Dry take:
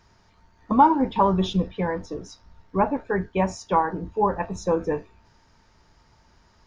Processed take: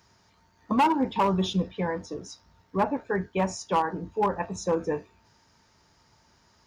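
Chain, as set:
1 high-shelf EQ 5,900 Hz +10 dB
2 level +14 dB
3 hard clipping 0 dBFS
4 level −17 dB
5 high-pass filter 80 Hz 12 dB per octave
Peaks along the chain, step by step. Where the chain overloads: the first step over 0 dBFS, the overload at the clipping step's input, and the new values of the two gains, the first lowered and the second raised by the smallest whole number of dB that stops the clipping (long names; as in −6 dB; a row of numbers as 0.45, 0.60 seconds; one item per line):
−5.0, +9.0, 0.0, −17.0, −14.5 dBFS
step 2, 9.0 dB
step 2 +5 dB, step 4 −8 dB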